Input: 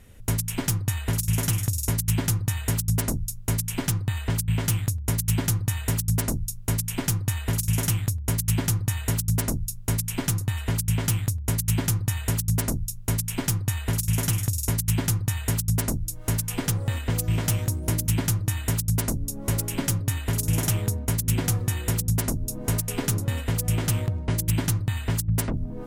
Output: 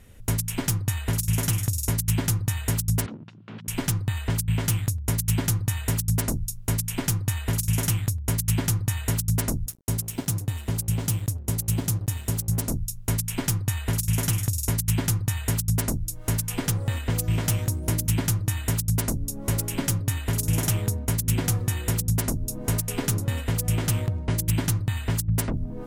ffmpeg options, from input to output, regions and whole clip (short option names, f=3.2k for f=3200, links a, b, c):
-filter_complex "[0:a]asettb=1/sr,asplit=3[a][b][c];[a]atrim=end=3.064[d];[b]atrim=start=3.06:end=3.68,asetpts=PTS-STARTPTS,afade=t=in:d=0.004:c=qsin,afade=t=out:st=0.616:d=0.004:c=qsin,acompressor=threshold=-32dB:ratio=6:attack=3.2:release=140:knee=1:detection=peak,aeval=exprs='0.0211*(abs(mod(val(0)/0.0211+3,4)-2)-1)':c=same,highpass=f=120:w=0.5412,highpass=f=120:w=1.3066,equalizer=f=210:t=q:w=4:g=9,equalizer=f=310:t=q:w=4:g=5,equalizer=f=980:t=q:w=4:g=3,equalizer=f=1.4k:t=q:w=4:g=4,equalizer=f=2.9k:t=q:w=4:g=4,lowpass=f=3.7k:w=0.5412,lowpass=f=3.7k:w=1.3066[e];[c]atrim=start=3.676[f];[d][e]acrossfade=d=0.004:c1=hsin:c2=qsin[g];[g][f]acrossfade=d=0.004:c1=qsin:c2=hsin,asettb=1/sr,asplit=3[h][i][j];[h]atrim=end=9.664[k];[i]atrim=start=9.66:end=12.7,asetpts=PTS-STARTPTS,afade=t=in:d=0.004:c=qsin,afade=t=out:st=3.036:d=0.004:c=qsin,highpass=45,equalizer=f=1.8k:w=0.71:g=-7,aeval=exprs='sgn(val(0))*max(abs(val(0))-0.00944,0)':c=same[l];[j]atrim=start=12.696[m];[k][l]acrossfade=d=0.004:c1=hsin:c2=qsin[n];[n][m]acrossfade=d=0.004:c1=qsin:c2=hsin"